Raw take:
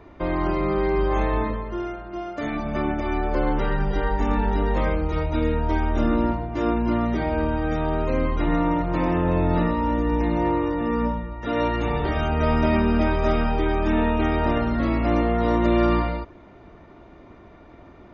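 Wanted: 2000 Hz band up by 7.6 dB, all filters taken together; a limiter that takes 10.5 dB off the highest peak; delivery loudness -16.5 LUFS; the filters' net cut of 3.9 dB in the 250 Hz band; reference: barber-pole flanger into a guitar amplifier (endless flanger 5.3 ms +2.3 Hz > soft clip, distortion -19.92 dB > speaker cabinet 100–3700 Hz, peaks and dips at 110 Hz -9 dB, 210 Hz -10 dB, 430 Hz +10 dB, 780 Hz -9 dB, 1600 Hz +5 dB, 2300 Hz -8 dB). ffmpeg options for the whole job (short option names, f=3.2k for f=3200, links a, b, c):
-filter_complex "[0:a]equalizer=f=250:t=o:g=-4,equalizer=f=2k:t=o:g=8.5,alimiter=limit=-18.5dB:level=0:latency=1,asplit=2[a][b];[b]adelay=5.3,afreqshift=2.3[c];[a][c]amix=inputs=2:normalize=1,asoftclip=threshold=-22.5dB,highpass=100,equalizer=f=110:t=q:w=4:g=-9,equalizer=f=210:t=q:w=4:g=-10,equalizer=f=430:t=q:w=4:g=10,equalizer=f=780:t=q:w=4:g=-9,equalizer=f=1.6k:t=q:w=4:g=5,equalizer=f=2.3k:t=q:w=4:g=-8,lowpass=f=3.7k:w=0.5412,lowpass=f=3.7k:w=1.3066,volume=16dB"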